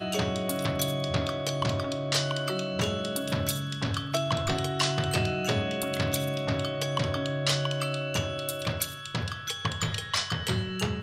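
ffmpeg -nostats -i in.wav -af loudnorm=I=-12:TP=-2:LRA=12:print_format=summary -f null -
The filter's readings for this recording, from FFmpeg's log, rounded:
Input Integrated:    -29.4 LUFS
Input True Peak:     -10.3 dBTP
Input LRA:             2.2 LU
Input Threshold:     -39.4 LUFS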